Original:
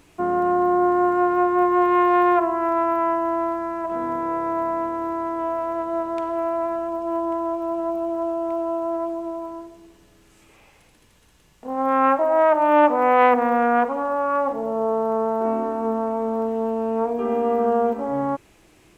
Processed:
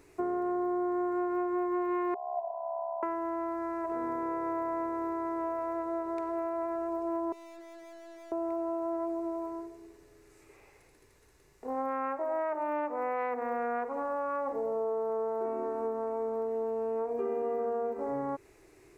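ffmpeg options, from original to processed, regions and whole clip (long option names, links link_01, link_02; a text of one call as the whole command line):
ffmpeg -i in.wav -filter_complex "[0:a]asettb=1/sr,asplit=3[link_01][link_02][link_03];[link_01]atrim=end=2.144[link_04];[link_02]atrim=start=2.14:end=3.03,asetpts=PTS-STARTPTS,afade=type=in:duration=0.004:curve=qsin,afade=type=out:start_time=0.886:duration=0.004:curve=qsin,tremolo=f=69:d=0.667,asuperpass=centerf=730:order=8:qfactor=2.2,asplit=2[link_05][link_06];[link_06]adelay=19,volume=-10.5dB[link_07];[link_05][link_07]amix=inputs=2:normalize=0,atrim=end_sample=39249[link_08];[link_03]atrim=start=3.026[link_09];[link_04][link_08]acrossfade=duration=0.004:curve1=hsin:curve2=qsin[link_10];[link_10][link_09]acrossfade=duration=0.004:curve1=qsin:curve2=hsin,asettb=1/sr,asplit=3[link_11][link_12][link_13];[link_11]atrim=end=7.324[link_14];[link_12]atrim=start=7.32:end=8.32,asetpts=PTS-STARTPTS,afade=type=in:duration=0.004:curve=qsin,afade=type=out:start_time=0.996:duration=0.004:curve=qsin,lowshelf=frequency=400:gain=-8.5,aeval=exprs='(tanh(158*val(0)+0.4)-tanh(0.4))/158':channel_layout=same,aecho=1:1:5.7:0.44,atrim=end_sample=44100[link_15];[link_13]atrim=start=8.316[link_16];[link_14][link_15]acrossfade=duration=0.004:curve1=hsin:curve2=qsin[link_17];[link_17][link_16]acrossfade=duration=0.004:curve1=qsin:curve2=hsin,equalizer=frequency=200:width_type=o:width=0.33:gain=-12,equalizer=frequency=400:width_type=o:width=0.33:gain=12,equalizer=frequency=2000:width_type=o:width=0.33:gain=4,equalizer=frequency=3150:width_type=o:width=0.33:gain=-12,acompressor=threshold=-23dB:ratio=6,volume=-6.5dB" out.wav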